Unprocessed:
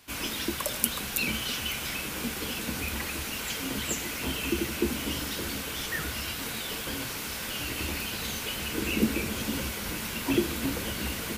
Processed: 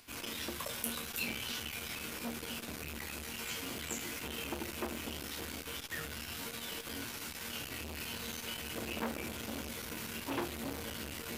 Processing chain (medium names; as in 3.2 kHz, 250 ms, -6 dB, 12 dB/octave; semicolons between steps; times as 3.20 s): upward compressor, threshold -50 dBFS; chord resonator D#2 minor, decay 0.29 s; transformer saturation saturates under 3.6 kHz; trim +5 dB